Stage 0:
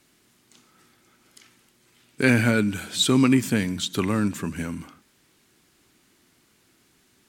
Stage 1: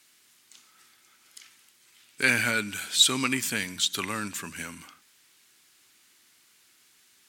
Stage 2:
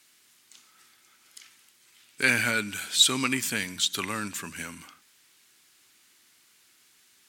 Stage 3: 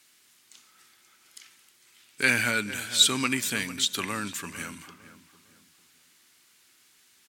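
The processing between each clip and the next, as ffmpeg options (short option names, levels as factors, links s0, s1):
-af "tiltshelf=f=790:g=-9.5,volume=0.531"
-af anull
-filter_complex "[0:a]asplit=2[s0][s1];[s1]adelay=453,lowpass=f=1800:p=1,volume=0.224,asplit=2[s2][s3];[s3]adelay=453,lowpass=f=1800:p=1,volume=0.34,asplit=2[s4][s5];[s5]adelay=453,lowpass=f=1800:p=1,volume=0.34[s6];[s0][s2][s4][s6]amix=inputs=4:normalize=0"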